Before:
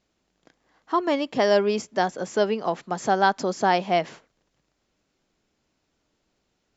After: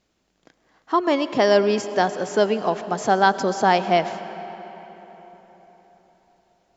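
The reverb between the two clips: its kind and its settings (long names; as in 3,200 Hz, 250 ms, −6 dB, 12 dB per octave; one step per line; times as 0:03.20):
comb and all-pass reverb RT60 4.4 s, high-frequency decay 0.65×, pre-delay 65 ms, DRR 12 dB
level +3 dB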